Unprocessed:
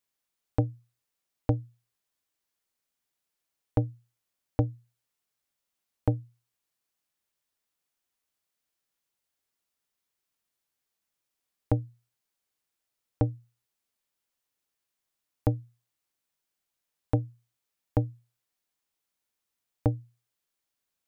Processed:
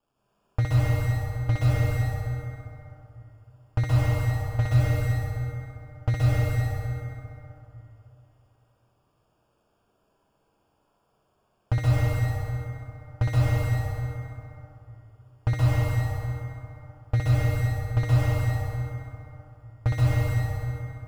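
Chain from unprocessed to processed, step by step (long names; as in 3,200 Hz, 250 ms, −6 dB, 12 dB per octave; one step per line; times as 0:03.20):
drawn EQ curve 120 Hz 0 dB, 330 Hz −19 dB, 690 Hz −3 dB
in parallel at −1 dB: compressor whose output falls as the input rises −29 dBFS
on the sum: decimation without filtering 22×
flutter between parallel walls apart 10.9 metres, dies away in 0.99 s
convolution reverb RT60 3.1 s, pre-delay 118 ms, DRR −6.5 dB
slew-rate limiting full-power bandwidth 46 Hz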